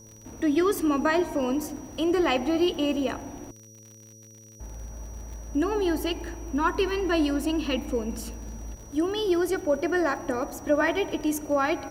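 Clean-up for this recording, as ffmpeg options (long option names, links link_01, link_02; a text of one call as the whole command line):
ffmpeg -i in.wav -af "adeclick=threshold=4,bandreject=frequency=109.1:width_type=h:width=4,bandreject=frequency=218.2:width_type=h:width=4,bandreject=frequency=327.3:width_type=h:width=4,bandreject=frequency=436.4:width_type=h:width=4,bandreject=frequency=545.5:width_type=h:width=4,bandreject=frequency=5800:width=30,agate=range=-21dB:threshold=-41dB" out.wav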